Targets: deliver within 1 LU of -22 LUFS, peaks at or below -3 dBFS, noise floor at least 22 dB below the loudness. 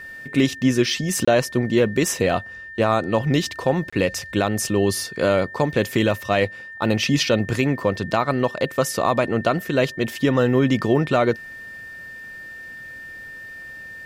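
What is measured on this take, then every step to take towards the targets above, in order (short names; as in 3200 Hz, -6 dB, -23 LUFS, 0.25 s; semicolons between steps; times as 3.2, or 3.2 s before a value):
dropouts 2; longest dropout 25 ms; steady tone 1800 Hz; tone level -35 dBFS; loudness -21.0 LUFS; peak -6.0 dBFS; loudness target -22.0 LUFS
-> interpolate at 1.25/3.9, 25 ms; notch 1800 Hz, Q 30; gain -1 dB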